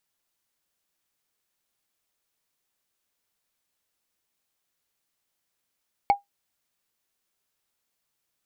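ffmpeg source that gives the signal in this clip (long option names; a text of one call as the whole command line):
ffmpeg -f lavfi -i "aevalsrc='0.282*pow(10,-3*t/0.14)*sin(2*PI*806*t)+0.0841*pow(10,-3*t/0.041)*sin(2*PI*2222.1*t)+0.0251*pow(10,-3*t/0.018)*sin(2*PI*4355.6*t)+0.0075*pow(10,-3*t/0.01)*sin(2*PI*7200*t)+0.00224*pow(10,-3*t/0.006)*sin(2*PI*10752*t)':duration=0.45:sample_rate=44100" out.wav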